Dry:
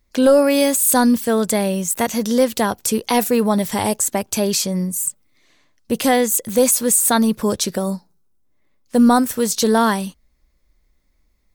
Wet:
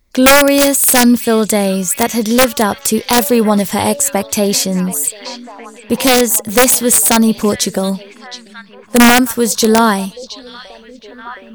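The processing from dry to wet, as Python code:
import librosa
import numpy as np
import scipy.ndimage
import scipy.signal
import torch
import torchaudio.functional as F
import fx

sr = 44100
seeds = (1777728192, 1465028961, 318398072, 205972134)

p1 = x + fx.echo_stepped(x, sr, ms=719, hz=3500.0, octaves=-0.7, feedback_pct=70, wet_db=-8.5, dry=0)
p2 = (np.mod(10.0 ** (6.5 / 20.0) * p1 + 1.0, 2.0) - 1.0) / 10.0 ** (6.5 / 20.0)
y = p2 * 10.0 ** (5.5 / 20.0)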